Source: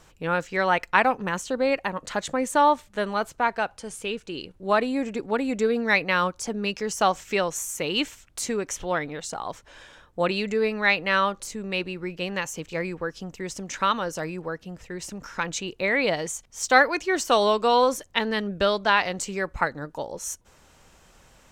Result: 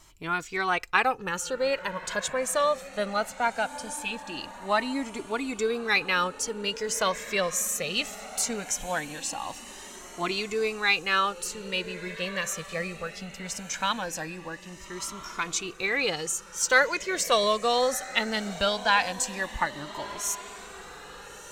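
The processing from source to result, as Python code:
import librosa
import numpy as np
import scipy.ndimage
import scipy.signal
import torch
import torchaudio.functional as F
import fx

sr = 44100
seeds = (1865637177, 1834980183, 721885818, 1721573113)

y = fx.high_shelf(x, sr, hz=3100.0, db=9.0)
y = fx.echo_diffused(y, sr, ms=1318, feedback_pct=48, wet_db=-15)
y = fx.comb_cascade(y, sr, direction='rising', hz=0.2)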